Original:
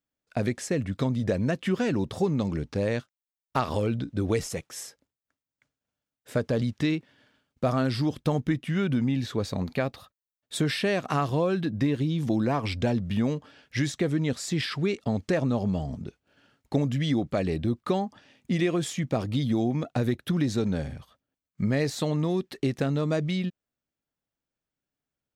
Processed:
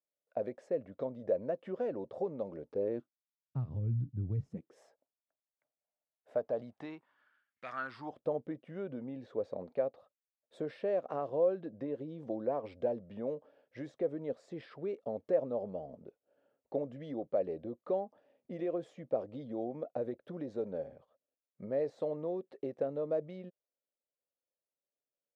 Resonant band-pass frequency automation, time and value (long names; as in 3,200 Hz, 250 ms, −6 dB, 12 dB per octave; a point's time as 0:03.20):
resonant band-pass, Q 3.9
0:02.64 560 Hz
0:03.64 120 Hz
0:04.42 120 Hz
0:04.83 660 Hz
0:06.69 660 Hz
0:07.65 2,100 Hz
0:08.24 540 Hz